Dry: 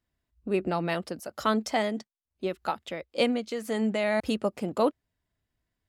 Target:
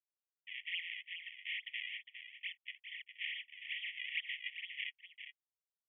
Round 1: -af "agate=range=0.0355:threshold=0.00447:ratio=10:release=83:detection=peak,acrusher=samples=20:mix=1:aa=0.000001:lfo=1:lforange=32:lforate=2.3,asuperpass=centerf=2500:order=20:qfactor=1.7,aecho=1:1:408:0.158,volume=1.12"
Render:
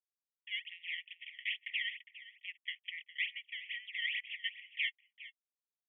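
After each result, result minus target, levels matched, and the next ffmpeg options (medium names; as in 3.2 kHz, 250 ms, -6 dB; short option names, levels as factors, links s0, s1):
echo-to-direct -7 dB; decimation with a swept rate: distortion -7 dB
-af "agate=range=0.0355:threshold=0.00447:ratio=10:release=83:detection=peak,acrusher=samples=20:mix=1:aa=0.000001:lfo=1:lforange=32:lforate=2.3,asuperpass=centerf=2500:order=20:qfactor=1.7,aecho=1:1:408:0.355,volume=1.12"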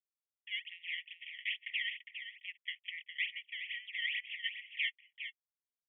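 decimation with a swept rate: distortion -7 dB
-af "agate=range=0.0355:threshold=0.00447:ratio=10:release=83:detection=peak,acrusher=samples=56:mix=1:aa=0.000001:lfo=1:lforange=89.6:lforate=2.3,asuperpass=centerf=2500:order=20:qfactor=1.7,aecho=1:1:408:0.355,volume=1.12"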